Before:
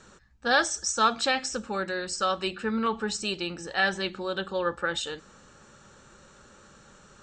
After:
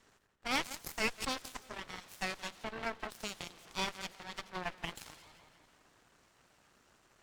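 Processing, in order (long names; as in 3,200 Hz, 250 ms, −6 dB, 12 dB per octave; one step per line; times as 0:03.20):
high-shelf EQ 5,200 Hz −5.5 dB
in parallel at +0.5 dB: downward compressor, threshold −34 dBFS, peak gain reduction 15.5 dB
on the sum: dead-zone distortion −53.5 dBFS
on a send: echo with a time of its own for lows and highs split 2,900 Hz, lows 169 ms, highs 86 ms, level −8 dB
on the sum: full-wave rectification
harmonic generator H 3 −8 dB, 5 −32 dB, 6 −17 dB, 7 −22 dB, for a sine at −9 dBFS
level −8.5 dB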